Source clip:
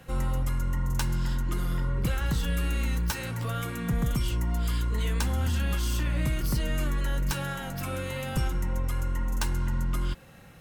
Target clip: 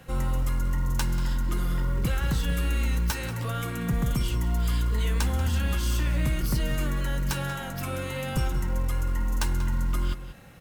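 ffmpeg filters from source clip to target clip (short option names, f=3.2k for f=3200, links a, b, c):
-filter_complex "[0:a]acrusher=bits=8:mode=log:mix=0:aa=0.000001,asplit=2[a][b];[b]adelay=186.6,volume=-12dB,highshelf=f=4k:g=-4.2[c];[a][c]amix=inputs=2:normalize=0,volume=1dB"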